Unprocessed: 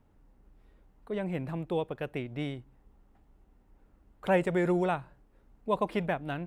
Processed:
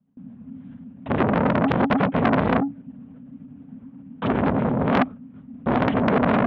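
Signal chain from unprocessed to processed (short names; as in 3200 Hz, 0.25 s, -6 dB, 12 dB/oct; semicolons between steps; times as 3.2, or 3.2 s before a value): in parallel at -11.5 dB: fuzz box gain 40 dB, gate -46 dBFS; on the sum: dynamic EQ 3100 Hz, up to -4 dB, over -42 dBFS, Q 1.2; LPC vocoder at 8 kHz whisper; low shelf 350 Hz +10.5 dB; negative-ratio compressor -19 dBFS, ratio -1; frequency shift -280 Hz; HPF 100 Hz 12 dB/oct; gate with hold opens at -44 dBFS; core saturation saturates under 1400 Hz; gain +6 dB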